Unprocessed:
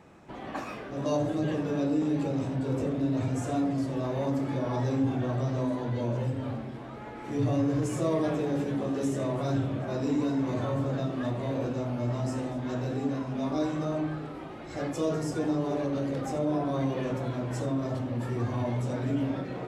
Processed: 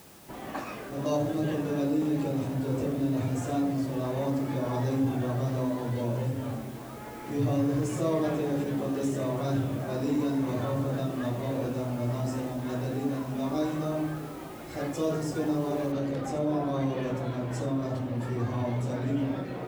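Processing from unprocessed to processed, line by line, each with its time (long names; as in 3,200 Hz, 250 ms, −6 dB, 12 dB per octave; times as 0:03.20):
0:15.92: noise floor change −55 dB −67 dB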